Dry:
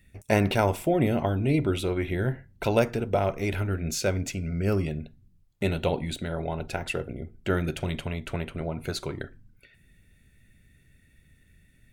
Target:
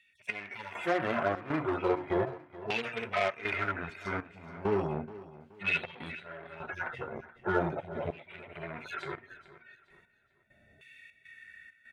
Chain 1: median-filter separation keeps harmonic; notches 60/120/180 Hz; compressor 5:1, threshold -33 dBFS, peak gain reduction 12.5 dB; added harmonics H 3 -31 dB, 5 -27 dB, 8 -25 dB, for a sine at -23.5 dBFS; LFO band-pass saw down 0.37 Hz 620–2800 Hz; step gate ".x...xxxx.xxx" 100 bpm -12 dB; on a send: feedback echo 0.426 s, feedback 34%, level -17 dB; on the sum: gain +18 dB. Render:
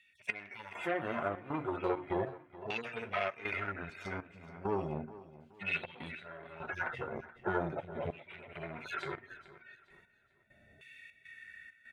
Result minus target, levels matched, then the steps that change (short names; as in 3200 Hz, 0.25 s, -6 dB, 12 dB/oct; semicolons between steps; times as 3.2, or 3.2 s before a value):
compressor: peak gain reduction +6 dB
change: compressor 5:1, threshold -25.5 dBFS, peak gain reduction 6.5 dB